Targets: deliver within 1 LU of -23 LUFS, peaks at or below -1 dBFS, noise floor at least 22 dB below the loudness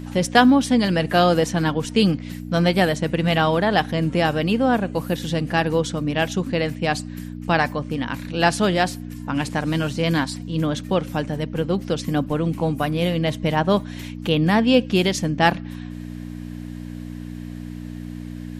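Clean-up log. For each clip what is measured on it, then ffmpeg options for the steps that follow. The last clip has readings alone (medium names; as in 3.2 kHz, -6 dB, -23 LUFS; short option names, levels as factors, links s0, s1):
hum 60 Hz; highest harmonic 300 Hz; hum level -30 dBFS; loudness -21.0 LUFS; peak level -1.5 dBFS; loudness target -23.0 LUFS
-> -af "bandreject=f=60:t=h:w=4,bandreject=f=120:t=h:w=4,bandreject=f=180:t=h:w=4,bandreject=f=240:t=h:w=4,bandreject=f=300:t=h:w=4"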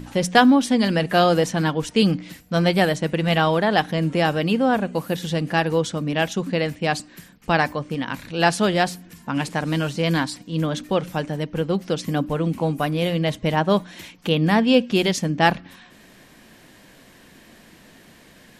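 hum not found; loudness -21.5 LUFS; peak level -2.0 dBFS; loudness target -23.0 LUFS
-> -af "volume=0.841"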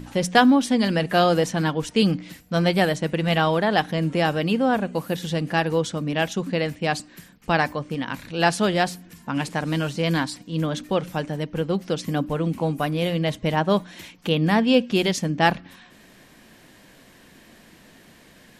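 loudness -23.0 LUFS; peak level -3.5 dBFS; noise floor -52 dBFS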